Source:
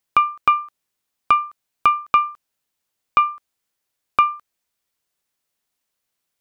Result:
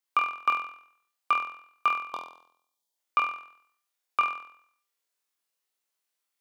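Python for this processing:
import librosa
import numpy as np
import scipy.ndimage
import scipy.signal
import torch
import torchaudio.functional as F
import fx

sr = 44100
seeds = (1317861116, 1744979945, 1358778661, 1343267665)

y = scipy.signal.sosfilt(scipy.signal.bessel(2, 420.0, 'highpass', norm='mag', fs=sr, output='sos'), x)
y = fx.spec_box(y, sr, start_s=1.93, length_s=1.02, low_hz=1100.0, high_hz=3100.0, gain_db=-14)
y = fx.room_flutter(y, sr, wall_m=4.1, rt60_s=0.62)
y = y * 10.0 ** (-8.5 / 20.0)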